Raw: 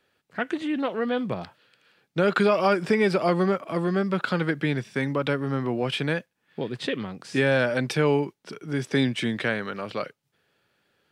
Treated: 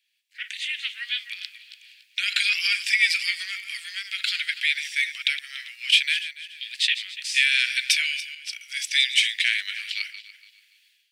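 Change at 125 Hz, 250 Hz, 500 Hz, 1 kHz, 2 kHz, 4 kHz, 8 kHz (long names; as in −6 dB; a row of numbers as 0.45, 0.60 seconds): below −40 dB, below −40 dB, below −40 dB, below −20 dB, +6.5 dB, +13.5 dB, +13.5 dB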